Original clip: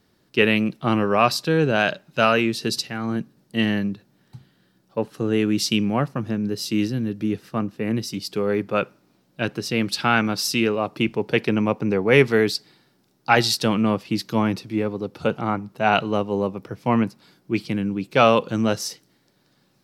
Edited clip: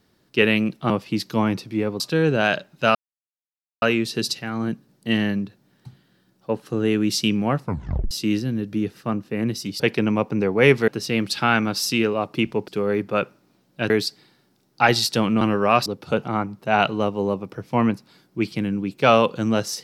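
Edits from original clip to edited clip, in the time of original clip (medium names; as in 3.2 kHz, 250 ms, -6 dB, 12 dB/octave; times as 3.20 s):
0.90–1.35 s: swap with 13.89–14.99 s
2.30 s: insert silence 0.87 s
6.10 s: tape stop 0.49 s
8.28–9.50 s: swap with 11.30–12.38 s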